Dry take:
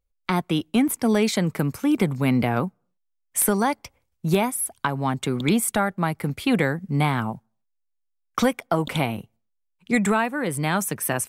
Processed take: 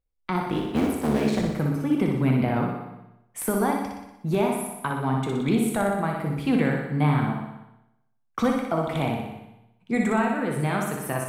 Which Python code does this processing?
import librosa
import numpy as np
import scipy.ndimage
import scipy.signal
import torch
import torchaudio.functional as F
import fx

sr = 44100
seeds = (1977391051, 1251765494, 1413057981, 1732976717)

p1 = fx.cycle_switch(x, sr, every=3, mode='muted', at=(0.44, 1.43))
p2 = fx.high_shelf(p1, sr, hz=2500.0, db=-10.0)
p3 = p2 + fx.room_flutter(p2, sr, wall_m=10.4, rt60_s=0.8, dry=0)
p4 = fx.rev_plate(p3, sr, seeds[0], rt60_s=0.84, hf_ratio=0.95, predelay_ms=0, drr_db=4.0)
y = p4 * 10.0 ** (-3.5 / 20.0)